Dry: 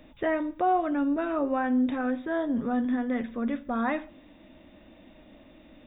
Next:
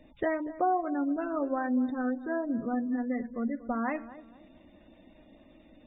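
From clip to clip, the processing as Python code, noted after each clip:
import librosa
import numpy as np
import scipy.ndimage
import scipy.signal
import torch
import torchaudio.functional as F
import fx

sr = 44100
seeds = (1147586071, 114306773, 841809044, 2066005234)

y = fx.transient(x, sr, attack_db=4, sustain_db=-2)
y = fx.spec_gate(y, sr, threshold_db=-25, keep='strong')
y = fx.echo_filtered(y, sr, ms=238, feedback_pct=33, hz=1300.0, wet_db=-15)
y = y * 10.0 ** (-4.0 / 20.0)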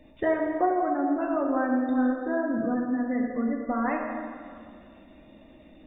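y = fx.rev_plate(x, sr, seeds[0], rt60_s=2.1, hf_ratio=0.7, predelay_ms=0, drr_db=0.5)
y = y * 10.0 ** (2.0 / 20.0)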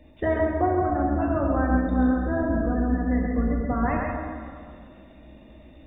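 y = fx.octave_divider(x, sr, octaves=2, level_db=1.0)
y = y + 10.0 ** (-4.0 / 20.0) * np.pad(y, (int(134 * sr / 1000.0), 0))[:len(y)]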